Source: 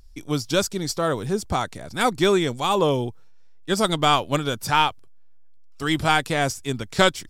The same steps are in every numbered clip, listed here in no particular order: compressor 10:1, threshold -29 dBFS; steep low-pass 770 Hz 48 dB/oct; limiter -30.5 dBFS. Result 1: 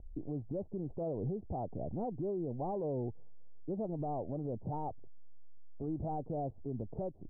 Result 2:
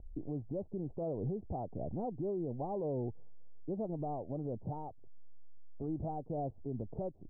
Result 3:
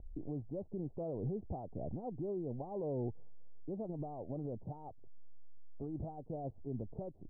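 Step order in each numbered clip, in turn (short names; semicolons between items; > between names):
steep low-pass > compressor > limiter; compressor > steep low-pass > limiter; compressor > limiter > steep low-pass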